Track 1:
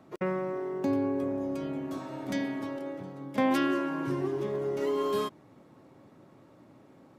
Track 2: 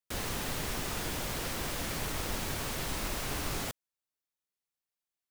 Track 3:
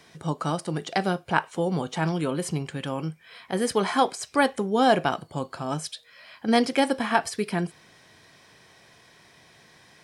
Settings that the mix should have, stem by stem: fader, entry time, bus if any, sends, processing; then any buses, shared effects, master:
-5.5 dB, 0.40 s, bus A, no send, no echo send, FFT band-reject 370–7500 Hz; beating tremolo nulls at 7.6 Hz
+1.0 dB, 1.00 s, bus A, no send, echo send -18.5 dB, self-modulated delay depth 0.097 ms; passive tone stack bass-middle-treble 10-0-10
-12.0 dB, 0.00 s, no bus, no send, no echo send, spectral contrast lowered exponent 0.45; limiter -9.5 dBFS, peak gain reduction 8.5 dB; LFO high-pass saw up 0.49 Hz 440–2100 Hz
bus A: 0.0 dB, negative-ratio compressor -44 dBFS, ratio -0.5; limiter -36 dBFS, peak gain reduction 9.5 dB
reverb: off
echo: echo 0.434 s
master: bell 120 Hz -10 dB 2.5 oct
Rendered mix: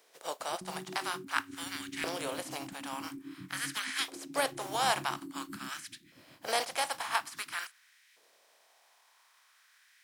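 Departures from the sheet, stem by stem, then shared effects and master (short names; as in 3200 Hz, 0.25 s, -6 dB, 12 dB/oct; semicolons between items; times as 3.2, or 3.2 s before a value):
stem 2: muted; stem 3: missing limiter -9.5 dBFS, peak gain reduction 8.5 dB; master: missing bell 120 Hz -10 dB 2.5 oct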